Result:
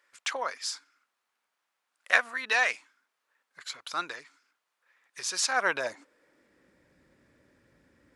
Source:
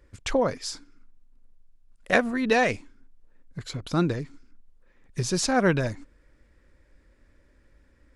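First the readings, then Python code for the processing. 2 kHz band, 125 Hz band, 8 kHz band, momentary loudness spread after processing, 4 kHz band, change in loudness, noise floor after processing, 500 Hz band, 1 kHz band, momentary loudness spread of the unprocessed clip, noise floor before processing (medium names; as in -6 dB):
+1.5 dB, under -30 dB, 0.0 dB, 16 LU, +0.5 dB, -3.5 dB, -83 dBFS, -11.5 dB, -3.5 dB, 19 LU, -61 dBFS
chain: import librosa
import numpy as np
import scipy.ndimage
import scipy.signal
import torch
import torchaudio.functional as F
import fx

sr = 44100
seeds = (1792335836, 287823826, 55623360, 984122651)

y = fx.dmg_noise_colour(x, sr, seeds[0], colour='brown', level_db=-65.0)
y = fx.filter_sweep_highpass(y, sr, from_hz=1200.0, to_hz=140.0, start_s=5.49, end_s=6.92, q=1.1)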